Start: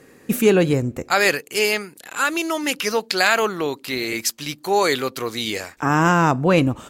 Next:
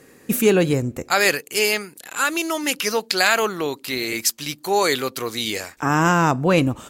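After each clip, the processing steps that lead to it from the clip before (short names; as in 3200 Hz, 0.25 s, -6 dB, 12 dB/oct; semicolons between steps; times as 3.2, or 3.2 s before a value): high shelf 5100 Hz +5.5 dB; gain -1 dB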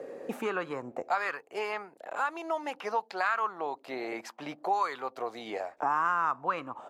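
auto-wah 560–1200 Hz, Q 4.5, up, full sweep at -13 dBFS; three-band squash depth 70%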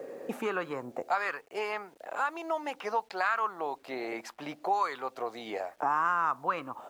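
bit-crush 11-bit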